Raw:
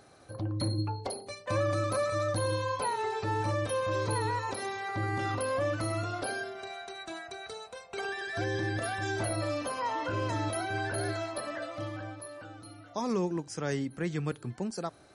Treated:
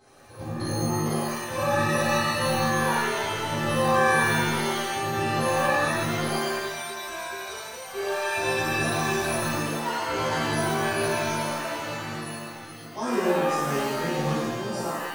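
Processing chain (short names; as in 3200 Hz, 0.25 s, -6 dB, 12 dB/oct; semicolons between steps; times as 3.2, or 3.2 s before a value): 9.21–9.83 gate with hold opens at -23 dBFS; shimmer reverb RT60 1.1 s, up +7 st, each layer -2 dB, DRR -11 dB; gain -7 dB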